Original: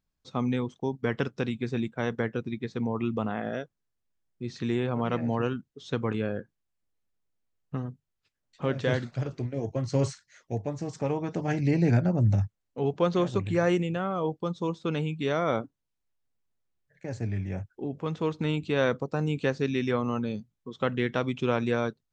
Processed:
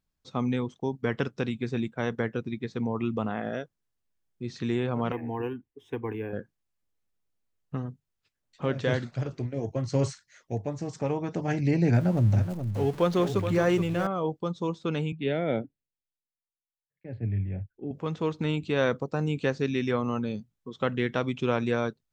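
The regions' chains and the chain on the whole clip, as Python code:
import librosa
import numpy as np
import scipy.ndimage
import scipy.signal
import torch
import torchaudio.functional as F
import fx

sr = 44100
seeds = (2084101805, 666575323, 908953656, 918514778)

y = fx.chain(x, sr, fx.high_shelf(hz=4300.0, db=-10.0),
    fx.fixed_phaser(hz=880.0, stages=8),
    fx.resample_linear(factor=3), at=(5.12, 6.33))
y = fx.chain(y, sr, fx.zero_step(step_db=-38.5),
    fx.echo_single(ms=424, db=-9.0), at=(11.94, 14.07))
y = fx.chain(y, sr, fx.air_absorb(metres=260.0),
    fx.fixed_phaser(hz=2700.0, stages=4),
    fx.band_widen(depth_pct=70), at=(15.12, 17.91))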